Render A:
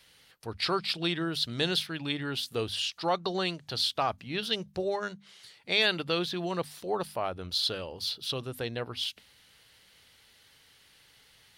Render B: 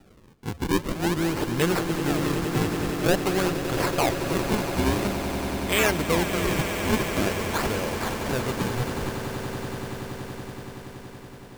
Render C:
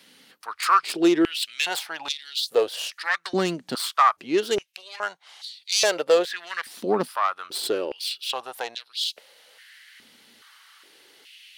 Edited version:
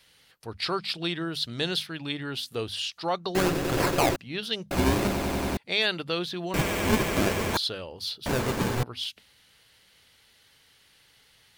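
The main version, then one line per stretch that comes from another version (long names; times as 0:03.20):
A
0:03.35–0:04.16: punch in from B
0:04.71–0:05.57: punch in from B
0:06.54–0:07.57: punch in from B
0:08.26–0:08.83: punch in from B
not used: C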